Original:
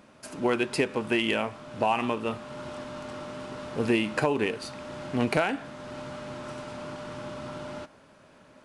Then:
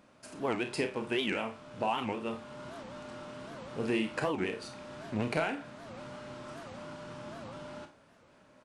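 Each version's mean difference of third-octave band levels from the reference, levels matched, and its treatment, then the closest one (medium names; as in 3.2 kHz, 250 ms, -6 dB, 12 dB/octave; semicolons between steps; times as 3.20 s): 1.5 dB: doubling 49 ms -10.5 dB; flutter echo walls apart 5.4 m, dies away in 0.21 s; resampled via 22.05 kHz; warped record 78 rpm, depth 250 cents; trim -7 dB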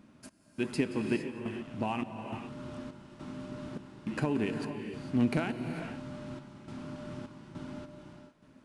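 6.0 dB: on a send: thinning echo 177 ms, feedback 49%, level -16 dB; on the sum: trance gate "xxx...xxx" 155 bpm -60 dB; resonant low shelf 370 Hz +8 dB, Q 1.5; gated-style reverb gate 480 ms rising, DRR 6 dB; trim -9 dB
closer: first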